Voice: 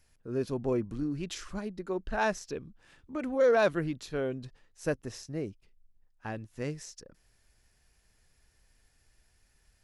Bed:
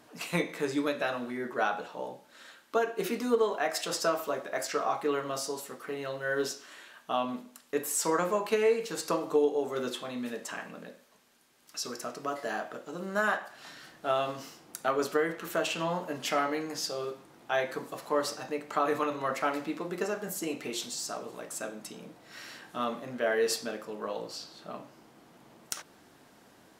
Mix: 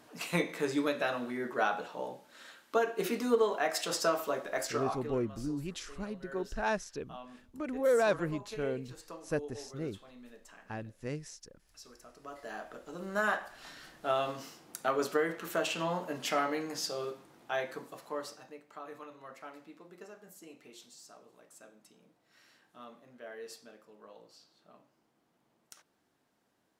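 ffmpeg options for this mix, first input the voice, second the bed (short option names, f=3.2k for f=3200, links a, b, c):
-filter_complex "[0:a]adelay=4450,volume=-3dB[a];[1:a]volume=14dB,afade=t=out:st=4.6:d=0.56:silence=0.158489,afade=t=in:st=12.11:d=1.18:silence=0.177828,afade=t=out:st=17.01:d=1.65:silence=0.158489[b];[a][b]amix=inputs=2:normalize=0"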